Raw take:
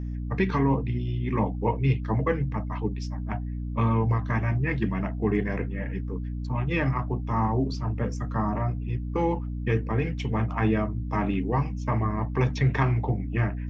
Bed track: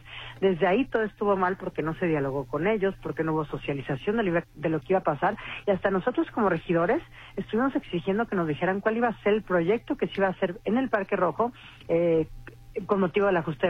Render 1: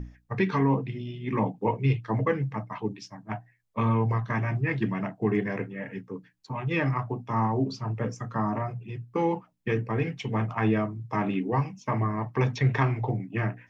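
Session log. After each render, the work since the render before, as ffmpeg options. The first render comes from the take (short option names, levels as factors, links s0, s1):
-af "bandreject=f=60:t=h:w=6,bandreject=f=120:t=h:w=6,bandreject=f=180:t=h:w=6,bandreject=f=240:t=h:w=6,bandreject=f=300:t=h:w=6"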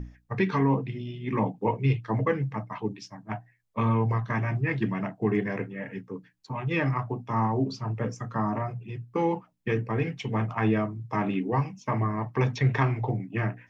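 -af anull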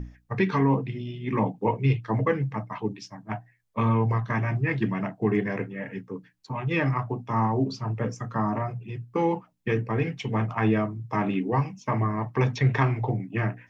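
-af "volume=1.19"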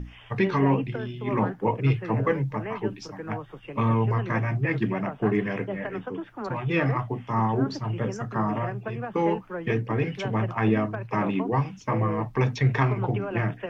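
-filter_complex "[1:a]volume=0.316[s0];[0:a][s0]amix=inputs=2:normalize=0"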